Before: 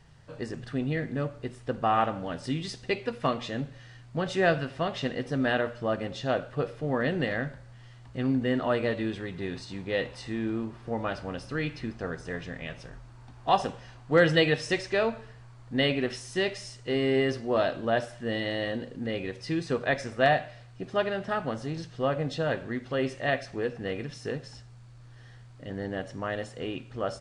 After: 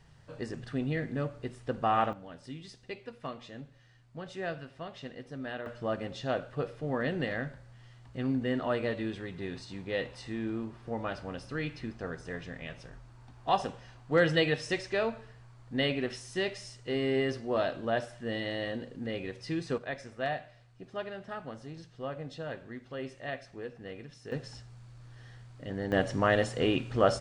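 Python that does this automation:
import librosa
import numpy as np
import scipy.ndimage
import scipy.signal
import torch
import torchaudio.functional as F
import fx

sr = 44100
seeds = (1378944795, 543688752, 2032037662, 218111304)

y = fx.gain(x, sr, db=fx.steps((0.0, -2.5), (2.13, -12.5), (5.66, -4.0), (19.78, -10.5), (24.32, -0.5), (25.92, 7.0)))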